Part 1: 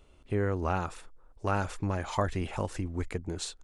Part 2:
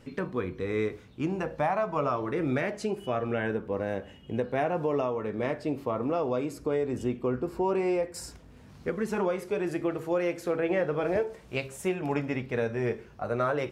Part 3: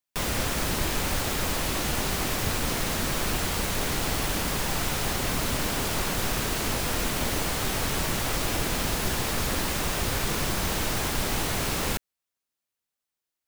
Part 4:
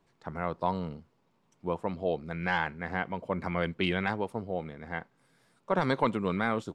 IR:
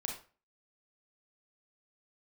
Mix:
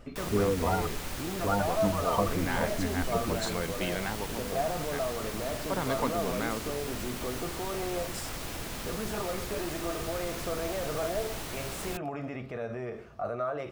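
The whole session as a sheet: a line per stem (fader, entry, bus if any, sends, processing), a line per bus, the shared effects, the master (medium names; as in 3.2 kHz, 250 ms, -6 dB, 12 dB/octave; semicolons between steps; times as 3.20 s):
+2.0 dB, 0.00 s, no send, spectral gate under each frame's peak -10 dB strong; comb 4.2 ms
-1.0 dB, 0.00 s, no send, peak limiter -29 dBFS, peak gain reduction 12 dB; small resonant body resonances 670/1200 Hz, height 13 dB, ringing for 35 ms
-10.5 dB, 0.00 s, no send, none
-5.0 dB, 0.00 s, no send, none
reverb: none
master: none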